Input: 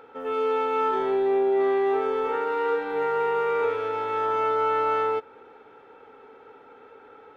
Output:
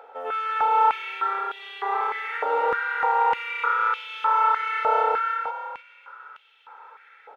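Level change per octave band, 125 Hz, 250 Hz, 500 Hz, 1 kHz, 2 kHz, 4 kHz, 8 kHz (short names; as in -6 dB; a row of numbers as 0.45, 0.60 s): under -10 dB, under -15 dB, -8.5 dB, +5.0 dB, +7.0 dB, +5.0 dB, n/a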